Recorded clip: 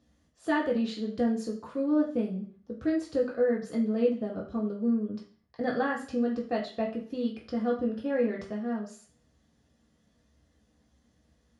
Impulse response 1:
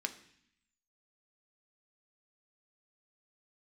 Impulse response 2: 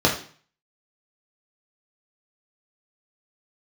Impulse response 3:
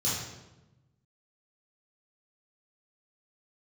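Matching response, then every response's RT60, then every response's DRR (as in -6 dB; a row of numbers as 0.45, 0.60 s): 2; 0.65, 0.45, 1.0 s; 6.5, -2.5, -9.5 dB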